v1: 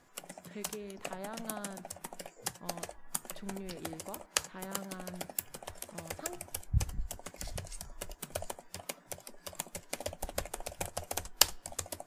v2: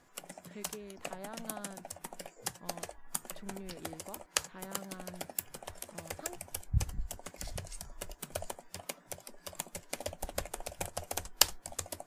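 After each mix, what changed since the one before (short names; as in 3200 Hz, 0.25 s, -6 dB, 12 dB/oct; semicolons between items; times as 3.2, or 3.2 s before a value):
reverb: off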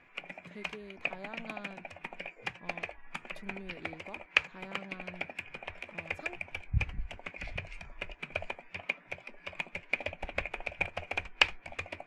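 background: add synth low-pass 2400 Hz, resonance Q 9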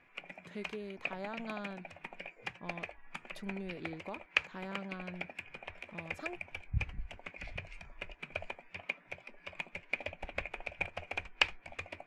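speech +4.0 dB; background -4.0 dB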